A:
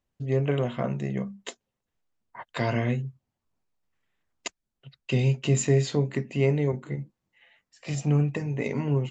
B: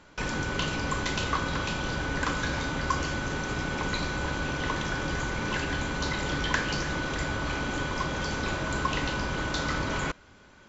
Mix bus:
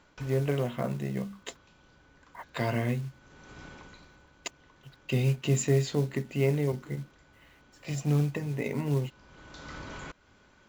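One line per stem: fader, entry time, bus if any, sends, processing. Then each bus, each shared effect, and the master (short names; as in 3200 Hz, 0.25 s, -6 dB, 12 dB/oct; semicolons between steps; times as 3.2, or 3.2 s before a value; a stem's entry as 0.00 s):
-3.0 dB, 0.00 s, no send, companded quantiser 6-bit
-6.0 dB, 0.00 s, no send, compressor 2:1, threshold -37 dBFS, peak gain reduction 9 dB; auto duck -18 dB, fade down 0.80 s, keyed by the first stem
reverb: off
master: dry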